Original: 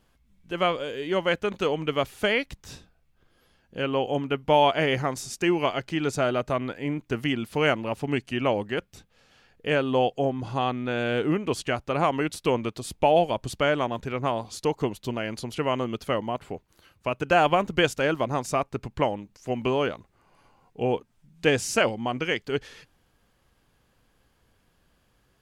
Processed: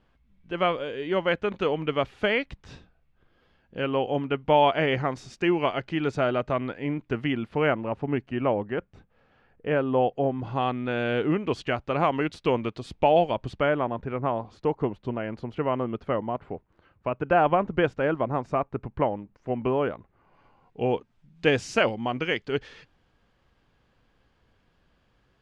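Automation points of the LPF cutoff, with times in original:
7 s 3100 Hz
7.92 s 1600 Hz
9.94 s 1600 Hz
10.78 s 3500 Hz
13.33 s 3500 Hz
13.82 s 1600 Hz
19.84 s 1600 Hz
20.91 s 4200 Hz

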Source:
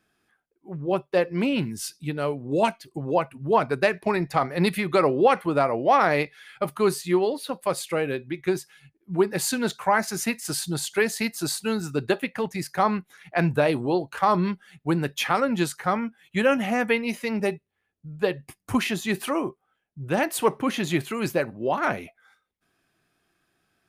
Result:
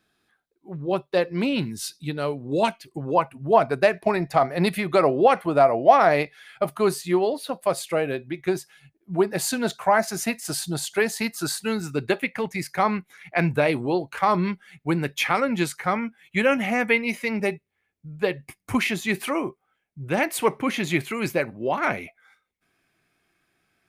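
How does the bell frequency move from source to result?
bell +9 dB 0.28 oct
2.65 s 3900 Hz
3.36 s 670 Hz
10.98 s 670 Hz
11.74 s 2200 Hz

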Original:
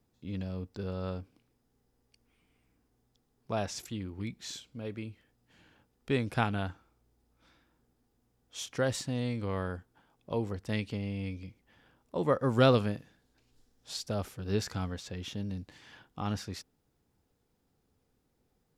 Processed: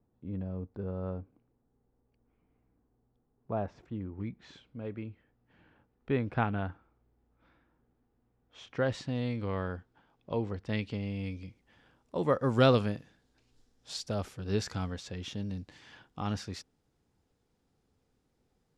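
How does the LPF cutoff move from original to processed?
3.86 s 1100 Hz
4.61 s 2000 Hz
8.58 s 2000 Hz
9.09 s 4200 Hz
10.69 s 4200 Hz
11.38 s 8700 Hz

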